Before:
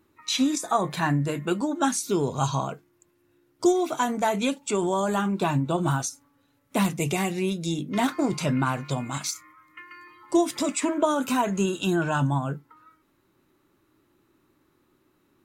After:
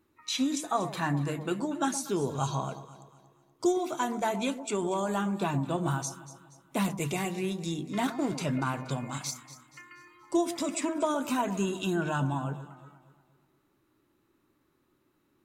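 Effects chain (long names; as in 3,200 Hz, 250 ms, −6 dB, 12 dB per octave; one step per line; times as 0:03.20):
delay that swaps between a low-pass and a high-pass 119 ms, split 1,000 Hz, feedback 63%, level −11 dB
level −5.5 dB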